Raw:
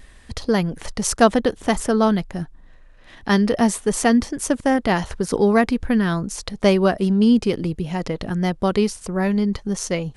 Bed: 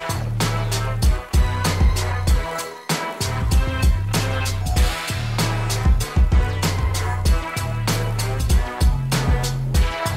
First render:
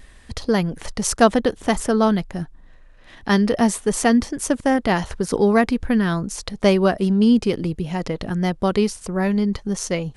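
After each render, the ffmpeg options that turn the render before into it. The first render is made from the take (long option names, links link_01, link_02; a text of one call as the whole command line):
ffmpeg -i in.wav -af anull out.wav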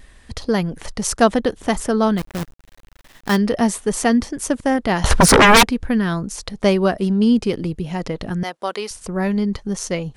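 ffmpeg -i in.wav -filter_complex "[0:a]asplit=3[link_01][link_02][link_03];[link_01]afade=type=out:start_time=2.17:duration=0.02[link_04];[link_02]acrusher=bits=5:dc=4:mix=0:aa=0.000001,afade=type=in:start_time=2.17:duration=0.02,afade=type=out:start_time=3.35:duration=0.02[link_05];[link_03]afade=type=in:start_time=3.35:duration=0.02[link_06];[link_04][link_05][link_06]amix=inputs=3:normalize=0,asettb=1/sr,asplit=3[link_07][link_08][link_09];[link_07]atrim=end=5.044[link_10];[link_08]atrim=start=5.04:end=5.63,asetpts=PTS-STARTPTS,afade=type=in:duration=0.004:curve=qsin,afade=type=out:start_time=0.586:duration=0.004:curve=qsin,aeval=exprs='0.501*sin(PI/2*6.31*val(0)/0.501)':channel_layout=same[link_11];[link_09]atrim=start=5.626[link_12];[link_10][link_11]acrossfade=duration=0.004:curve1=hsin:curve2=qsin[link_13];[link_13][link_12]acrossfade=duration=0.004:curve1=qsin:curve2=hsin,asettb=1/sr,asplit=3[link_14][link_15][link_16];[link_14]atrim=end=8.434[link_17];[link_15]atrim=start=8.43:end=8.91,asetpts=PTS-STARTPTS,afade=type=in:duration=0.004:curve=qsin,afade=type=out:start_time=0.476:duration=0.004:curve=qsin,highpass=590[link_18];[link_16]atrim=start=8.906[link_19];[link_17][link_18]acrossfade=duration=0.004:curve1=hsin:curve2=qsin[link_20];[link_20][link_19]acrossfade=duration=0.004:curve1=qsin:curve2=hsin" out.wav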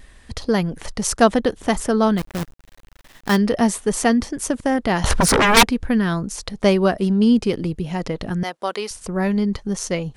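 ffmpeg -i in.wav -filter_complex "[0:a]asettb=1/sr,asplit=3[link_01][link_02][link_03];[link_01]atrim=end=4.114[link_04];[link_02]atrim=start=4.11:end=5.57,asetpts=PTS-STARTPTS,afade=type=in:duration=0.004:curve=qsin,afade=type=out:start_time=1.456:duration=0.004:curve=qsin,acompressor=threshold=-13dB:ratio=6:attack=3.2:release=140:knee=1:detection=peak[link_05];[link_03]atrim=start=5.566[link_06];[link_04][link_05]acrossfade=duration=0.004:curve1=hsin:curve2=qsin[link_07];[link_07][link_06]acrossfade=duration=0.004:curve1=qsin:curve2=hsin" out.wav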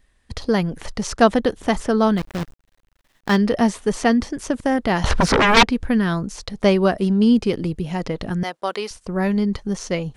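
ffmpeg -i in.wav -filter_complex "[0:a]acrossover=split=6000[link_01][link_02];[link_02]acompressor=threshold=-44dB:ratio=4:attack=1:release=60[link_03];[link_01][link_03]amix=inputs=2:normalize=0,agate=range=-15dB:threshold=-37dB:ratio=16:detection=peak" out.wav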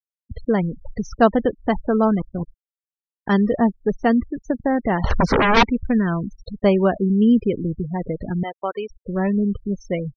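ffmpeg -i in.wav -af "afftfilt=real='re*gte(hypot(re,im),0.0794)':imag='im*gte(hypot(re,im),0.0794)':win_size=1024:overlap=0.75,highshelf=frequency=2900:gain=-9.5" out.wav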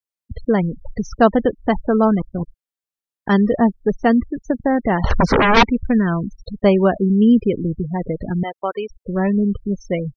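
ffmpeg -i in.wav -af "volume=2.5dB,alimiter=limit=-2dB:level=0:latency=1" out.wav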